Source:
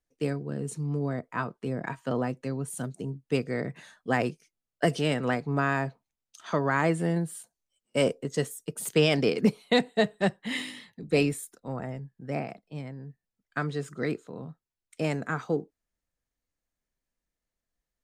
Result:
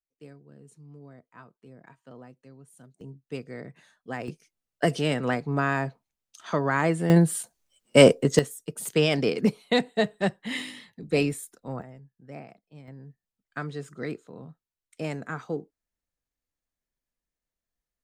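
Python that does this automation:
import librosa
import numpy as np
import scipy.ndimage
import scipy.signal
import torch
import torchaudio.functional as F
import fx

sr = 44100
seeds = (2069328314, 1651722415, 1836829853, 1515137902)

y = fx.gain(x, sr, db=fx.steps((0.0, -18.0), (3.01, -8.5), (4.28, 1.0), (7.1, 10.5), (8.39, 0.0), (11.82, -10.0), (12.88, -3.5)))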